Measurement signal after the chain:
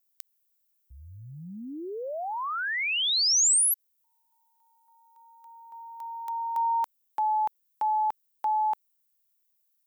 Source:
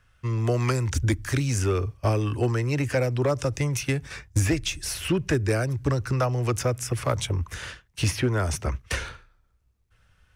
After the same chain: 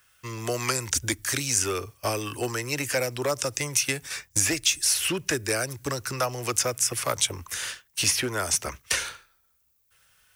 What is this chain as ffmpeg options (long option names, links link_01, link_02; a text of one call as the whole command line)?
ffmpeg -i in.wav -filter_complex "[0:a]acrossover=split=9100[link_01][link_02];[link_02]acompressor=threshold=-51dB:ratio=4:attack=1:release=60[link_03];[link_01][link_03]amix=inputs=2:normalize=0,aemphasis=mode=production:type=riaa" out.wav